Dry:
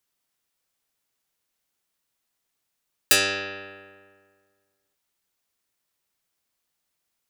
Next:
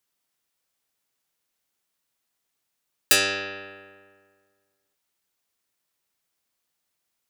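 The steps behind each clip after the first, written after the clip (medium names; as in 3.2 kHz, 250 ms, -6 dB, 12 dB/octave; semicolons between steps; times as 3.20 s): bass shelf 72 Hz -5 dB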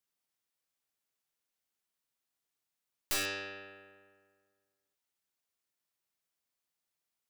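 single-diode clipper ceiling -20 dBFS; integer overflow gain 16.5 dB; trim -9 dB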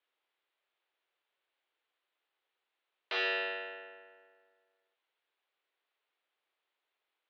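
Chebyshev shaper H 5 -17 dB, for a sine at -25.5 dBFS; mistuned SSB +83 Hz 260–3600 Hz; trim +3.5 dB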